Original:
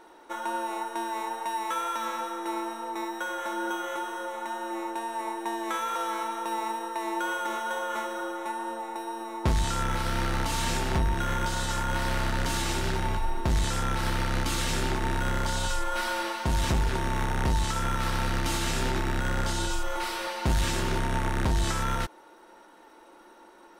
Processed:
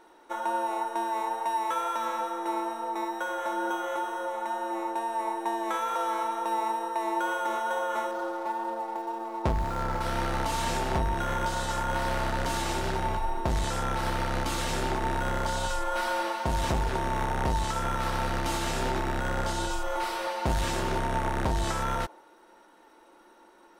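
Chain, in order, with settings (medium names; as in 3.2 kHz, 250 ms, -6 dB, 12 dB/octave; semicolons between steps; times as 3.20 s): 8.11–10.01 s: median filter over 15 samples; dynamic bell 680 Hz, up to +8 dB, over -46 dBFS, Q 0.87; trim -3.5 dB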